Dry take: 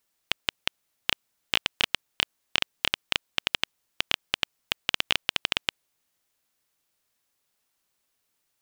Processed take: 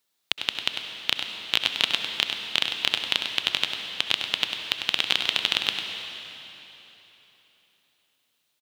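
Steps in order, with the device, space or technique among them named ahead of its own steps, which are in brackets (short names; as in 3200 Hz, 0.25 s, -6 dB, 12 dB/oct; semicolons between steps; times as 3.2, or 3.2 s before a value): PA in a hall (HPF 110 Hz 12 dB/oct; bell 3800 Hz +7 dB 0.54 oct; echo 99 ms -8 dB; reverb RT60 3.5 s, pre-delay 61 ms, DRR 5.5 dB); gain -1 dB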